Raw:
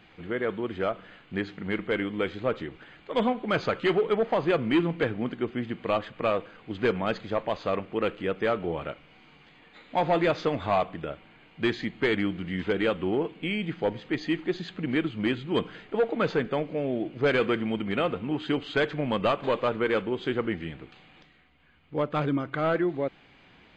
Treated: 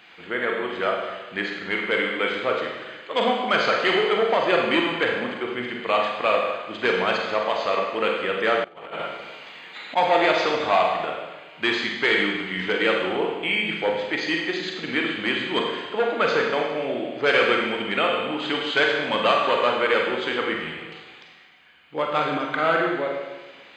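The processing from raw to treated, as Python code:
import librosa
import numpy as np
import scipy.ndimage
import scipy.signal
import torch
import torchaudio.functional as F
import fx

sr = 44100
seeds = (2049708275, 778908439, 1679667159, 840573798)

y = fx.rev_schroeder(x, sr, rt60_s=1.2, comb_ms=33, drr_db=0.0)
y = fx.over_compress(y, sr, threshold_db=-35.0, ratio=-0.5, at=(8.64, 9.96))
y = fx.highpass(y, sr, hz=1100.0, slope=6)
y = F.gain(torch.from_numpy(y), 8.5).numpy()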